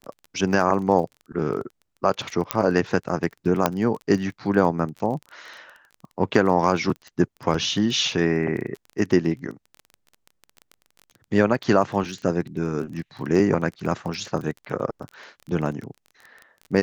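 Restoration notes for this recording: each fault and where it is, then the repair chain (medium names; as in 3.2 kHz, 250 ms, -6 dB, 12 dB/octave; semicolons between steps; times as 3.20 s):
crackle 20 per s -31 dBFS
2.51 s: pop -3 dBFS
3.66 s: pop -4 dBFS
7.54 s: dropout 3.5 ms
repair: de-click; interpolate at 7.54 s, 3.5 ms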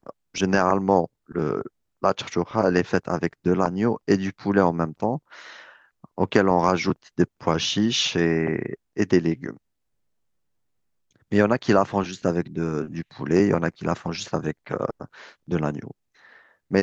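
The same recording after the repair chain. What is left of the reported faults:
3.66 s: pop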